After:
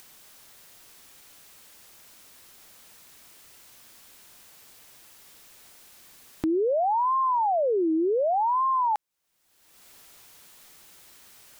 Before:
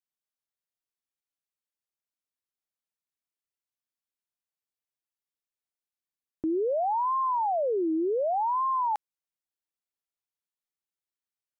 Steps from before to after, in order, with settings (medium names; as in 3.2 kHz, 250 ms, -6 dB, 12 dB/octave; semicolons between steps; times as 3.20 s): peak limiter -28.5 dBFS, peak gain reduction 5 dB; upward compressor, threshold -35 dBFS; trim +8 dB